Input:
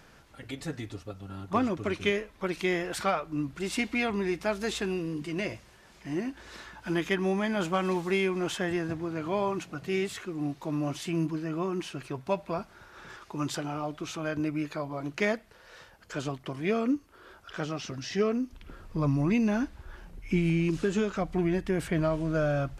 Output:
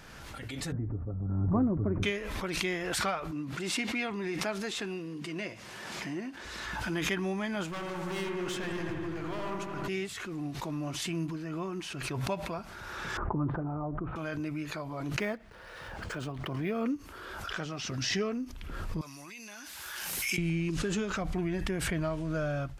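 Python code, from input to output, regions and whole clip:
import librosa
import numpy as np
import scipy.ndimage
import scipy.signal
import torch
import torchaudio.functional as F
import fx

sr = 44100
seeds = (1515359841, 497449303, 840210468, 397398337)

y = fx.chain(x, sr, fx.gaussian_blur(sigma=7.5),
    fx.low_shelf(hz=330.0, db=11.0), at=(0.72, 2.03))
y = fx.chain(y, sr, fx.highpass(hz=160.0, slope=12),
    fx.high_shelf(hz=8300.0, db=-5.5), at=(3.31, 6.45))
y = fx.chain(y, sr, fx.overload_stage(gain_db=30.5),
    fx.echo_wet_lowpass(ms=82, feedback_pct=78, hz=2000.0, wet_db=-3.5), at=(7.68, 9.88))
y = fx.chain(y, sr, fx.lowpass(hz=1300.0, slope=24),
    fx.tilt_eq(slope=-2.5),
    fx.sustainer(db_per_s=88.0), at=(13.17, 14.16))
y = fx.chain(y, sr, fx.high_shelf(hz=2000.0, db=-6.5),
    fx.resample_linear(factor=3), at=(15.19, 16.86))
y = fx.chain(y, sr, fx.highpass(hz=42.0, slope=12),
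    fx.differentiator(),
    fx.env_flatten(amount_pct=100), at=(19.01, 20.38))
y = fx.peak_eq(y, sr, hz=440.0, db=-3.5, octaves=2.2)
y = fx.pre_swell(y, sr, db_per_s=25.0)
y = F.gain(torch.from_numpy(y), -3.0).numpy()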